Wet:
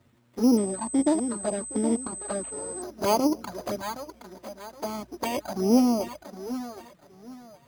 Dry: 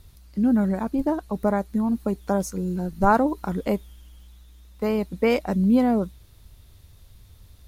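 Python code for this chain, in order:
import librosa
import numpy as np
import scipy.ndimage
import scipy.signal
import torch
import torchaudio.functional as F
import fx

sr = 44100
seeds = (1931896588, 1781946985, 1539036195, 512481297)

y = fx.lower_of_two(x, sr, delay_ms=3.2)
y = scipy.signal.sosfilt(scipy.signal.butter(2, 170.0, 'highpass', fs=sr, output='sos'), y)
y = fx.air_absorb(y, sr, metres=350.0)
y = fx.echo_feedback(y, sr, ms=768, feedback_pct=27, wet_db=-10.0)
y = fx.env_flanger(y, sr, rest_ms=9.1, full_db=-24.0)
y = fx.dynamic_eq(y, sr, hz=1900.0, q=3.7, threshold_db=-58.0, ratio=4.0, max_db=-5)
y = np.repeat(y[::8], 8)[:len(y)]
y = fx.pwm(y, sr, carrier_hz=8200.0, at=(0.57, 2.82))
y = F.gain(torch.from_numpy(y), 3.5).numpy()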